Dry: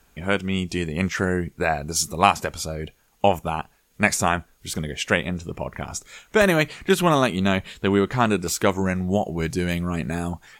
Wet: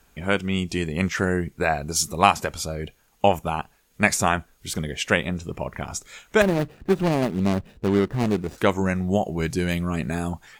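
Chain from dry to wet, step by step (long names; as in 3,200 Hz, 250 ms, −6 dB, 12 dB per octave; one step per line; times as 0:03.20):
0:06.42–0:08.58: running median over 41 samples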